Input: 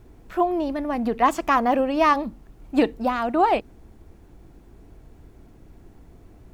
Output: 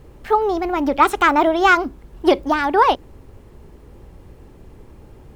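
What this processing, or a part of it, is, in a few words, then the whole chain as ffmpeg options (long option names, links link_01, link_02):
nightcore: -af "asetrate=53802,aresample=44100,volume=5dB"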